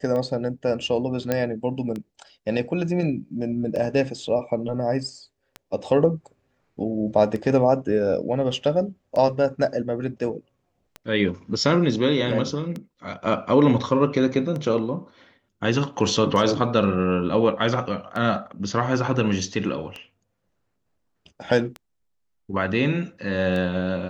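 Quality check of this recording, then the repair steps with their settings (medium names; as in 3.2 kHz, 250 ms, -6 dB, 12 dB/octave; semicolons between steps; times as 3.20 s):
tick 33 1/3 rpm -19 dBFS
1.32 s: pop -9 dBFS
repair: de-click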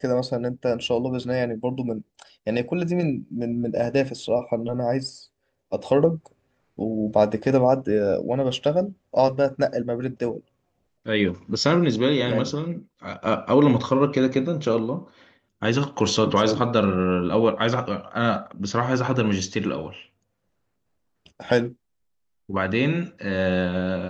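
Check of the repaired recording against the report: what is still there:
nothing left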